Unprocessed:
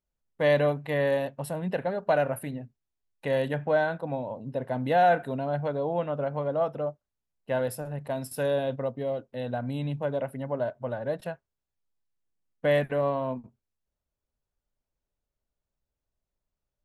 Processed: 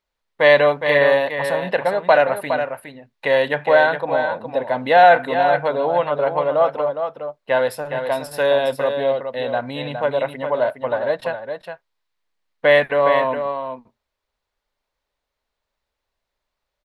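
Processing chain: ten-band graphic EQ 125 Hz -5 dB, 500 Hz +6 dB, 1 kHz +10 dB, 2 kHz +10 dB, 4 kHz +11 dB; delay 413 ms -7.5 dB; trim +1 dB

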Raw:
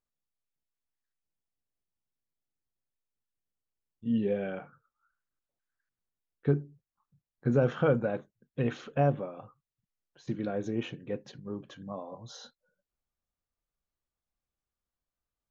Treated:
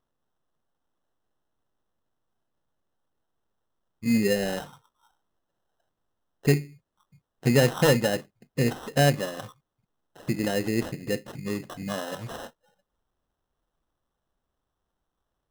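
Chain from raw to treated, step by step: in parallel at 0 dB: compression, threshold -40 dBFS, peak gain reduction 19 dB; on the sum: sample-rate reducer 2.3 kHz, jitter 0%; trim +4 dB

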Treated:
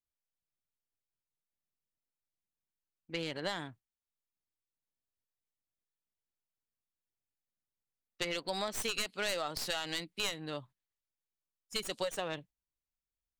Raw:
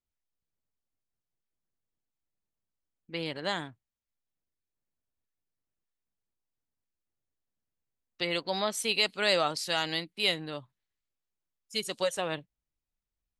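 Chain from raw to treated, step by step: tracing distortion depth 0.082 ms; compression, threshold -32 dBFS, peak gain reduction 10.5 dB; gate -55 dBFS, range -8 dB

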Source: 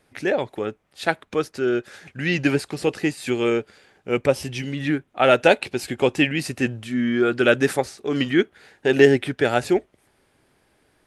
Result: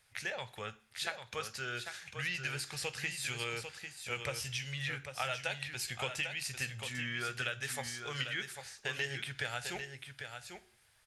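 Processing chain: amplifier tone stack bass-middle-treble 10-0-10; compression 5:1, threshold -35 dBFS, peak gain reduction 14 dB; delay 797 ms -7.5 dB; on a send at -11.5 dB: reverberation RT60 0.45 s, pre-delay 3 ms

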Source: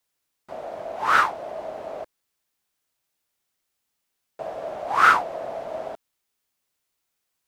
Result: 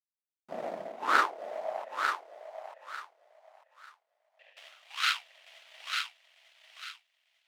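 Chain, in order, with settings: level rider gain up to 14 dB; power-law waveshaper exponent 1.4; high-pass sweep 190 Hz -> 2.9 kHz, 0.84–2.61 s; 1.84–4.57 s: vowel filter e; on a send: thinning echo 896 ms, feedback 30%, high-pass 850 Hz, level -4 dB; on the sum: trim -7.5 dB

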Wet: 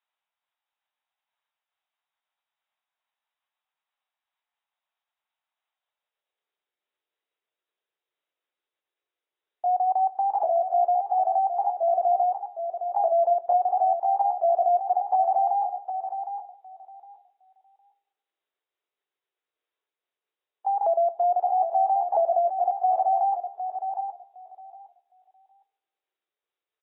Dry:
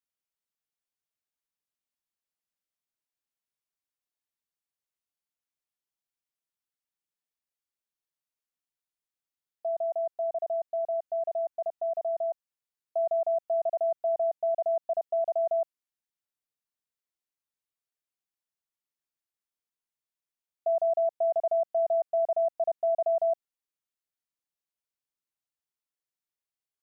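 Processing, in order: sawtooth pitch modulation +3.5 st, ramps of 1304 ms; bass shelf 350 Hz -7 dB; hum notches 60/120/180/240/300 Hz; in parallel at +3 dB: gain riding within 4 dB 2 s; on the sum: peak limiter -20.5 dBFS, peak gain reduction 5 dB; high-pass sweep 800 Hz -> 400 Hz, 5.71–6.52 s; feedback delay 761 ms, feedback 18%, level -8 dB; reverberation, pre-delay 3 ms, DRR 14 dB; AAC 16 kbps 22.05 kHz

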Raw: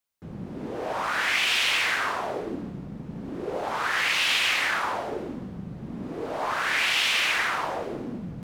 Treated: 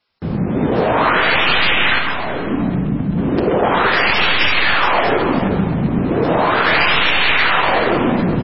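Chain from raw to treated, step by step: tracing distortion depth 0.17 ms; 4.33–4.79 s: bass shelf 100 Hz +3 dB; compression 16:1, threshold -30 dBFS, peak gain reduction 12 dB; feedback delay 375 ms, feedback 26%, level -7 dB; 1.99–3.17 s: time-frequency box 320–6300 Hz -8 dB; 5.29–5.72 s: doubling 26 ms -13 dB; echo from a far wall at 25 m, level -8 dB; loudness maximiser +21 dB; crackling interface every 0.13 s, samples 256, repeat, from 0.91 s; trim -2.5 dB; MP3 16 kbps 16 kHz

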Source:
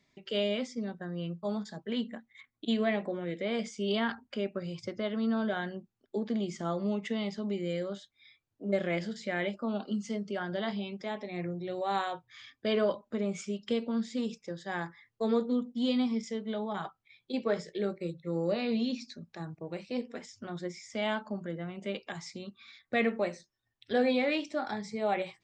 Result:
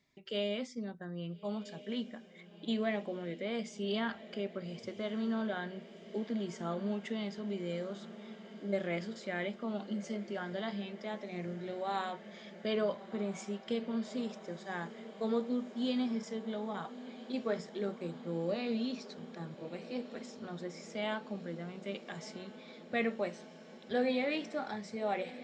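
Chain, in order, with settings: echo that smears into a reverb 1322 ms, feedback 77%, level -15.5 dB; trim -4.5 dB

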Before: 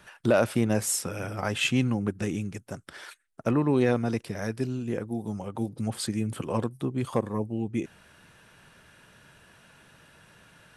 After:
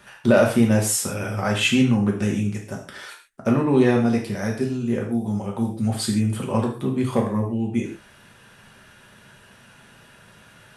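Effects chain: gated-style reverb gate 170 ms falling, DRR -0.5 dB; trim +2.5 dB

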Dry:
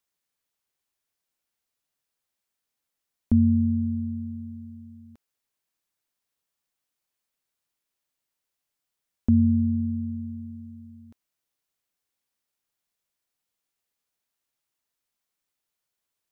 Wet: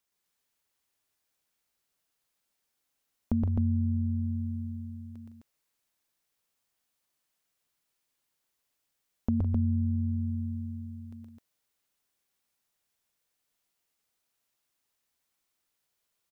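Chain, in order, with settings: compression 2.5:1, threshold -29 dBFS, peak gain reduction 9.5 dB; on a send: loudspeakers at several distances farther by 41 m -2 dB, 55 m -11 dB, 89 m -3 dB

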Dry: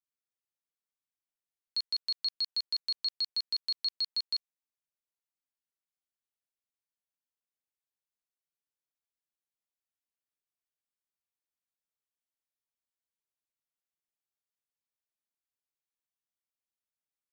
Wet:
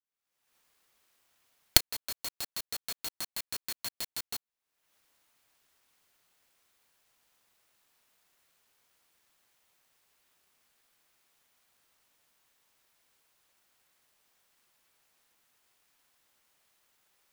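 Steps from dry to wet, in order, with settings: recorder AGC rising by 54 dB/s; high-pass 570 Hz 12 dB/octave; sampling jitter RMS 0.045 ms; trim -5.5 dB

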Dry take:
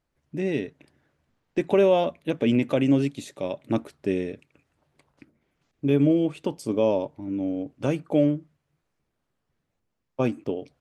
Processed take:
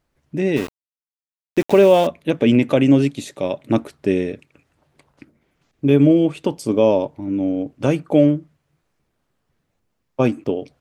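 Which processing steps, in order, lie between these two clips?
0.56–2.07 s: small samples zeroed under -34 dBFS; trim +7 dB

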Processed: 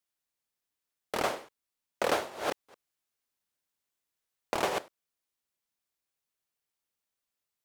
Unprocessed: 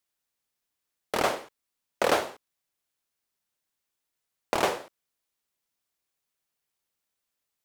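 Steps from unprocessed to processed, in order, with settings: 2.09–4.79 s: chunks repeated in reverse 218 ms, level -3.5 dB; trim -4.5 dB

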